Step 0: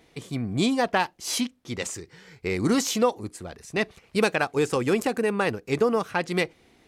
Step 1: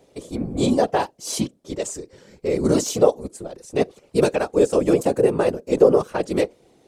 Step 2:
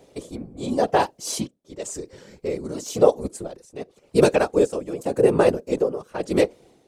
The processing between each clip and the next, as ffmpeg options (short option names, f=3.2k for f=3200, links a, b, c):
-af "equalizer=f=250:t=o:w=1:g=4,equalizer=f=500:t=o:w=1:g=11,equalizer=f=2k:t=o:w=1:g=-6,equalizer=f=8k:t=o:w=1:g=6,afftfilt=real='hypot(re,im)*cos(2*PI*random(0))':imag='hypot(re,im)*sin(2*PI*random(1))':win_size=512:overlap=0.75,volume=3.5dB"
-af "tremolo=f=0.92:d=0.86,volume=3dB"